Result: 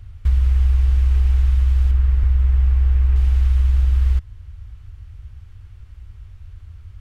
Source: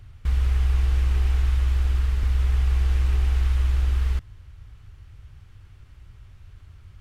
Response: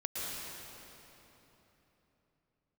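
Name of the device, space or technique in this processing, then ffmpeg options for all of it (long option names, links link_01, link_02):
car stereo with a boomy subwoofer: -filter_complex "[0:a]lowshelf=frequency=110:width_type=q:width=1.5:gain=7,alimiter=limit=-9dB:level=0:latency=1:release=370,asettb=1/sr,asplit=3[link_01][link_02][link_03];[link_01]atrim=end=1.914[link_04];[link_02]atrim=start=1.91:end=3.16,asetpts=PTS-STARTPTS,afade=type=in:duration=0.004:curve=qsin,afade=type=out:start_time=1.246:duration=0.004:curve=qsin,acrossover=split=2700[link_05][link_06];[link_06]acompressor=threshold=-59dB:ratio=4:attack=1:release=60[link_07];[link_05][link_07]amix=inputs=2:normalize=0[link_08];[link_03]atrim=start=3.156[link_09];[link_04][link_08]acrossfade=duration=0.004:curve1=hsin:curve2=qsin[link_10];[link_10][link_09]acrossfade=duration=0.004:curve1=qsin:curve2=hsin"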